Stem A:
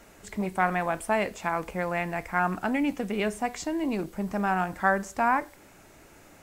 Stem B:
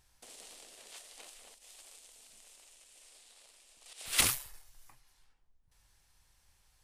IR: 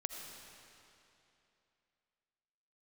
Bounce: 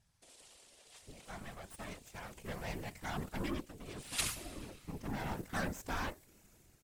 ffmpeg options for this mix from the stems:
-filter_complex "[0:a]equalizer=frequency=1000:width=0.35:gain=-13.5,dynaudnorm=framelen=120:gausssize=9:maxgain=11.5dB,aeval=exprs='0.299*(cos(1*acos(clip(val(0)/0.299,-1,1)))-cos(1*PI/2))+0.075*(cos(8*acos(clip(val(0)/0.299,-1,1)))-cos(8*PI/2))':channel_layout=same,adelay=700,volume=-2dB,afade=type=in:start_time=1.94:duration=0.69:silence=0.446684,afade=type=out:start_time=3.47:duration=0.24:silence=0.354813,afade=type=in:start_time=4.79:duration=0.63:silence=0.298538[link_01];[1:a]lowpass=11000,equalizer=frequency=73:width_type=o:width=0.24:gain=13.5,volume=-4.5dB,asplit=2[link_02][link_03];[link_03]volume=-5dB[link_04];[2:a]atrim=start_sample=2205[link_05];[link_04][link_05]afir=irnorm=-1:irlink=0[link_06];[link_01][link_02][link_06]amix=inputs=3:normalize=0,afftfilt=real='hypot(re,im)*cos(2*PI*random(0))':imag='hypot(re,im)*sin(2*PI*random(1))':win_size=512:overlap=0.75"

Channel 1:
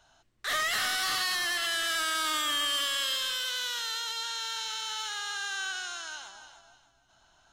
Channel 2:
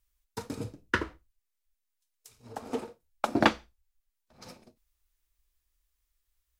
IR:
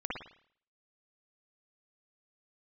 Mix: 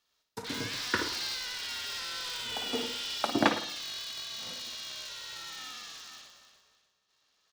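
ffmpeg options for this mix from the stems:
-filter_complex "[0:a]bandpass=frequency=5000:width_type=q:width=2.5:csg=0,aemphasis=mode=reproduction:type=riaa,aeval=exprs='val(0)*sgn(sin(2*PI*250*n/s))':channel_layout=same,volume=1.5dB,asplit=2[link_01][link_02];[link_02]volume=-8.5dB[link_03];[1:a]highpass=110,volume=-9.5dB,asplit=2[link_04][link_05];[link_05]volume=-8dB[link_06];[2:a]atrim=start_sample=2205[link_07];[link_06][link_07]afir=irnorm=-1:irlink=0[link_08];[link_03]aecho=0:1:61|122|183|244|305|366|427|488:1|0.53|0.281|0.149|0.0789|0.0418|0.0222|0.0117[link_09];[link_01][link_04][link_08][link_09]amix=inputs=4:normalize=0,dynaudnorm=framelen=160:gausssize=3:maxgain=5dB"

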